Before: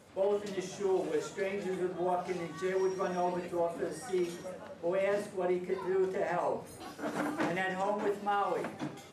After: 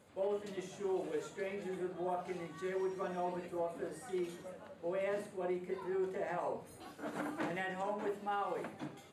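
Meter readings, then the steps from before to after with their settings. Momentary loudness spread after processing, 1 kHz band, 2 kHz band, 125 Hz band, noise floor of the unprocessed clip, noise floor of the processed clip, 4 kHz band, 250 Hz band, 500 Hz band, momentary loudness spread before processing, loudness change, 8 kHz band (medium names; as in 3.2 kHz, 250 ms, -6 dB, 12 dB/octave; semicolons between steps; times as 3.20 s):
7 LU, -6.0 dB, -6.0 dB, -6.0 dB, -50 dBFS, -56 dBFS, -7.0 dB, -6.0 dB, -6.0 dB, 7 LU, -6.0 dB, -7.5 dB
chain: peaking EQ 5.5 kHz -9 dB 0.25 oct; trim -6 dB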